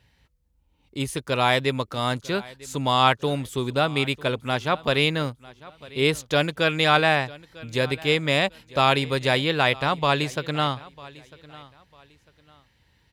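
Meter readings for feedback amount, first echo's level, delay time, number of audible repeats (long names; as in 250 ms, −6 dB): 29%, −21.0 dB, 949 ms, 2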